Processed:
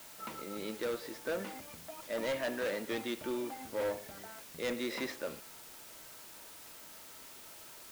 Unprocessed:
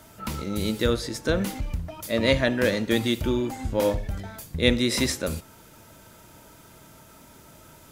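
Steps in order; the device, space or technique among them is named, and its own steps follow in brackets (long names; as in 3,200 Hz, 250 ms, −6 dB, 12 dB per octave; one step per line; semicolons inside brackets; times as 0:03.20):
aircraft radio (band-pass filter 360–2,600 Hz; hard clipping −23.5 dBFS, distortion −9 dB; white noise bed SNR 12 dB)
level −7 dB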